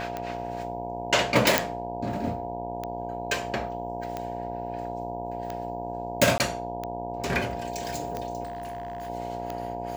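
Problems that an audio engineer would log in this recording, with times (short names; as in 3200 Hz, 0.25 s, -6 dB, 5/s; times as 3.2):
buzz 60 Hz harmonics 16 -36 dBFS
tick 45 rpm -18 dBFS
tone 700 Hz -34 dBFS
1.58 pop -1 dBFS
6.38–6.4 gap 19 ms
8.43–9.1 clipped -31 dBFS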